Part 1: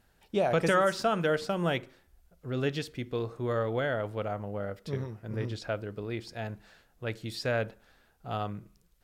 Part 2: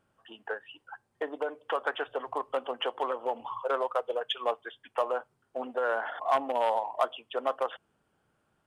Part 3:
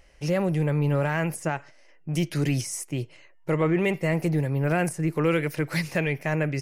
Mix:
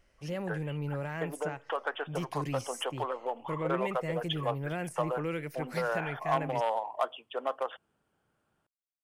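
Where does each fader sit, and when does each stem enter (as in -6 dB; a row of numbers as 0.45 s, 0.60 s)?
mute, -3.0 dB, -11.5 dB; mute, 0.00 s, 0.00 s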